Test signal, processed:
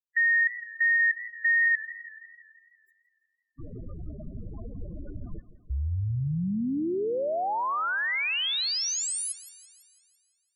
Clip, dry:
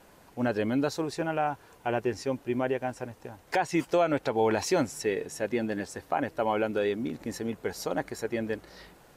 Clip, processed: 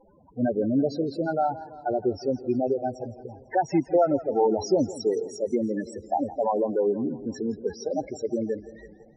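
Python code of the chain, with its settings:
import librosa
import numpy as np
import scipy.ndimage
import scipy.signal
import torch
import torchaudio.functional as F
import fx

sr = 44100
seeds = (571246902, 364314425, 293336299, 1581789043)

y = fx.spec_topn(x, sr, count=8)
y = fx.echo_warbled(y, sr, ms=167, feedback_pct=59, rate_hz=2.8, cents=104, wet_db=-16.5)
y = F.gain(torch.from_numpy(y), 4.5).numpy()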